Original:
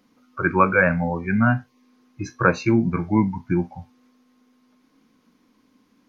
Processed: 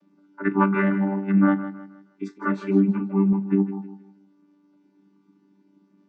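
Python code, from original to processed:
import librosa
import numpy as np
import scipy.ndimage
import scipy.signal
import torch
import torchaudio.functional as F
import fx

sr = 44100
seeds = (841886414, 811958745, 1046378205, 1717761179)

y = fx.chord_vocoder(x, sr, chord='bare fifth', root=55)
y = fx.echo_feedback(y, sr, ms=158, feedback_pct=35, wet_db=-12.5)
y = fx.ensemble(y, sr, at=(2.38, 3.33))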